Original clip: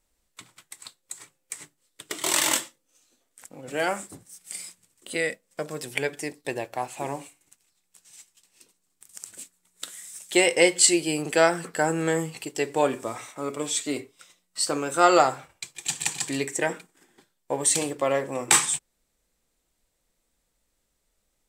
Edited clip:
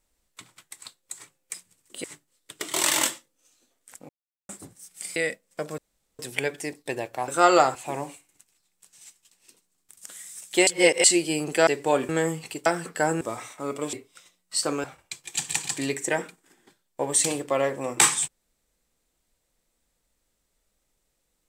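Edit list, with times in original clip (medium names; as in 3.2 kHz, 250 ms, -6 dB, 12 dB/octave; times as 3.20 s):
3.59–3.99 s: mute
4.66–5.16 s: move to 1.54 s
5.78 s: insert room tone 0.41 s
9.21–9.87 s: delete
10.45–10.82 s: reverse
11.45–12.00 s: swap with 12.57–12.99 s
13.71–13.97 s: delete
14.88–15.35 s: move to 6.87 s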